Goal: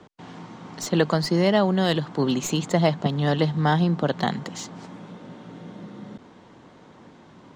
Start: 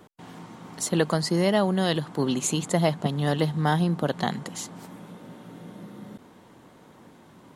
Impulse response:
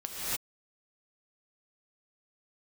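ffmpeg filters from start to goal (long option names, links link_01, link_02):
-filter_complex "[0:a]lowpass=frequency=6600:width=0.5412,lowpass=frequency=6600:width=1.3066,acrossover=split=120|3400[link_01][link_02][link_03];[link_03]aeval=exprs='clip(val(0),-1,0.0211)':channel_layout=same[link_04];[link_01][link_02][link_04]amix=inputs=3:normalize=0,volume=2.5dB"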